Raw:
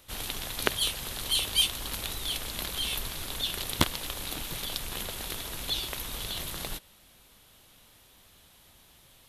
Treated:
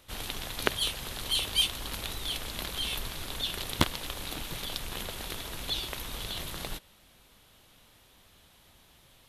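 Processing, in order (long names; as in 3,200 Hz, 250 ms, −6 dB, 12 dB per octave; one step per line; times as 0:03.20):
high-shelf EQ 6,200 Hz −6 dB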